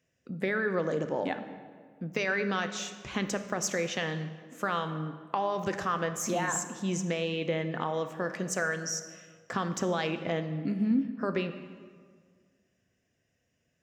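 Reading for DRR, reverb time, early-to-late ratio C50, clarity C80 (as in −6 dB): 8.5 dB, 1.8 s, 10.5 dB, 11.5 dB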